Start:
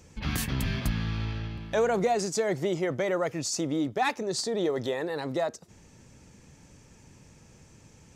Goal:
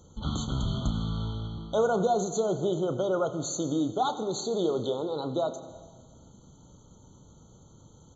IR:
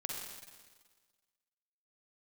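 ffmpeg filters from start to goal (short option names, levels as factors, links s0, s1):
-filter_complex "[0:a]asplit=2[s0][s1];[1:a]atrim=start_sample=2205,adelay=32[s2];[s1][s2]afir=irnorm=-1:irlink=0,volume=0.335[s3];[s0][s3]amix=inputs=2:normalize=0,aresample=16000,aresample=44100,afftfilt=real='re*eq(mod(floor(b*sr/1024/1500),2),0)':imag='im*eq(mod(floor(b*sr/1024/1500),2),0)':win_size=1024:overlap=0.75"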